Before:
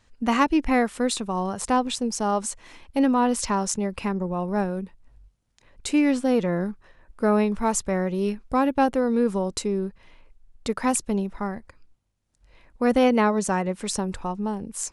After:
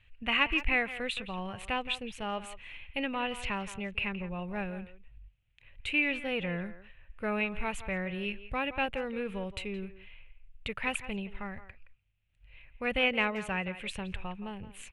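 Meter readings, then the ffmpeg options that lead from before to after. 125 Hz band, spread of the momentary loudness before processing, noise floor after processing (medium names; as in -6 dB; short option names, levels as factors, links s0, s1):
-9.5 dB, 10 LU, -65 dBFS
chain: -filter_complex "[0:a]firequalizer=gain_entry='entry(110,0);entry(240,-17);entry(550,-11);entry(990,-13);entry(2600,9);entry(5200,-26);entry(10000,-17)':delay=0.05:min_phase=1,asplit=2[s0][s1];[s1]adelay=170,highpass=300,lowpass=3400,asoftclip=type=hard:threshold=0.112,volume=0.224[s2];[s0][s2]amix=inputs=2:normalize=0"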